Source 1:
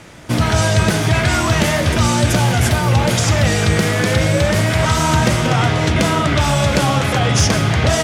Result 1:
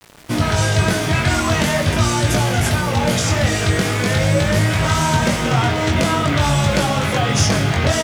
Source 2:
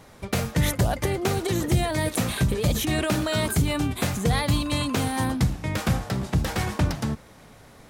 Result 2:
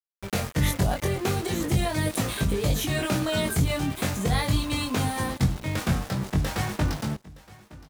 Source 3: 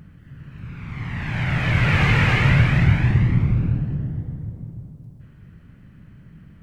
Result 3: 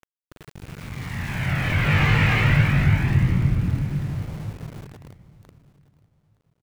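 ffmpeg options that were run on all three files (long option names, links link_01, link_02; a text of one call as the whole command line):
ffmpeg -i in.wav -filter_complex "[0:a]flanger=delay=19.5:depth=2.7:speed=0.43,aeval=exprs='val(0)*gte(abs(val(0)),0.0141)':channel_layout=same,asplit=2[link_01][link_02];[link_02]aecho=0:1:918|1836:0.0891|0.0267[link_03];[link_01][link_03]amix=inputs=2:normalize=0,volume=1.5dB" out.wav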